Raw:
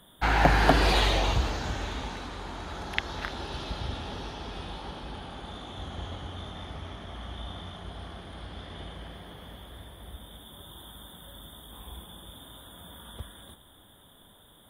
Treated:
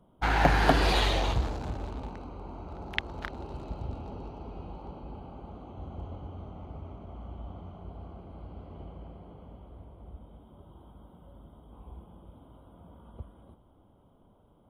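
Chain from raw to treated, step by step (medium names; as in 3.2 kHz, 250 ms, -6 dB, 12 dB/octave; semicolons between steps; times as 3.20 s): local Wiener filter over 25 samples; trim -1.5 dB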